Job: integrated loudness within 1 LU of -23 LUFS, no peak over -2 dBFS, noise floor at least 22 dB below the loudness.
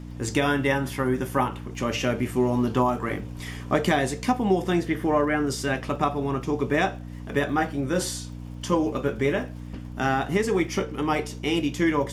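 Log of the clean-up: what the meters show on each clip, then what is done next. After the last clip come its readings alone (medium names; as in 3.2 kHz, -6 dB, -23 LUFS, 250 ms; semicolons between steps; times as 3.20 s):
tick rate 52 per s; hum 60 Hz; highest harmonic 300 Hz; hum level -35 dBFS; loudness -25.5 LUFS; peak level -8.0 dBFS; loudness target -23.0 LUFS
-> de-click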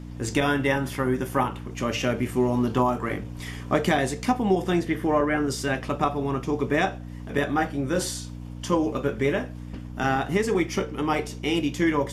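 tick rate 0 per s; hum 60 Hz; highest harmonic 300 Hz; hum level -35 dBFS
-> de-hum 60 Hz, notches 5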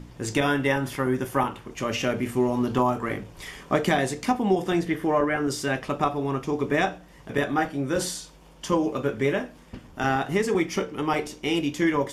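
hum not found; loudness -26.0 LUFS; peak level -8.0 dBFS; loudness target -23.0 LUFS
-> trim +3 dB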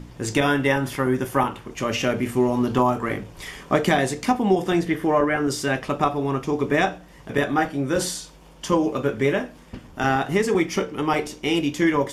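loudness -23.0 LUFS; peak level -5.0 dBFS; noise floor -47 dBFS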